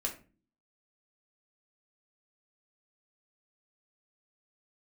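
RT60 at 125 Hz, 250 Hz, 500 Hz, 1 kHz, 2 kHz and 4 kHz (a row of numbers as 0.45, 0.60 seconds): 0.60, 0.65, 0.40, 0.30, 0.30, 0.25 seconds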